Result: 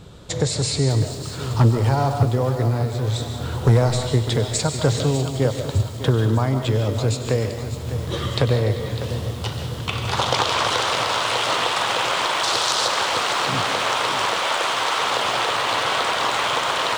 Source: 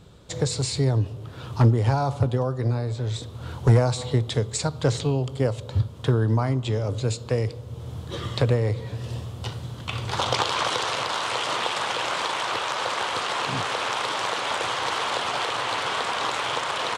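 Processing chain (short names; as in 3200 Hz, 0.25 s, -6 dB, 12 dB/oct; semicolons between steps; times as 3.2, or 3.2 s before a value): 12.43–12.88 resonant high shelf 3400 Hz +8.5 dB, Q 1.5; 14.38–14.99 HPF 400 Hz 6 dB/oct; in parallel at +2 dB: compressor, threshold -30 dBFS, peak gain reduction 16 dB; on the sum: thin delay 97 ms, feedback 84%, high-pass 2700 Hz, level -13.5 dB; on a send at -7 dB: reverb RT60 0.50 s, pre-delay 0.105 s; on the sum: lo-fi delay 0.602 s, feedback 55%, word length 6-bit, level -11 dB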